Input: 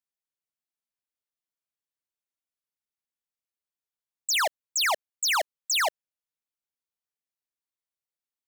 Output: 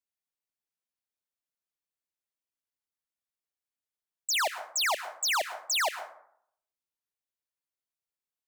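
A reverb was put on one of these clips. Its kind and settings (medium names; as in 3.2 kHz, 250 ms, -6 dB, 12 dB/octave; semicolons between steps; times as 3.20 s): plate-style reverb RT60 0.66 s, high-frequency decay 0.45×, pre-delay 100 ms, DRR 11 dB; trim -3 dB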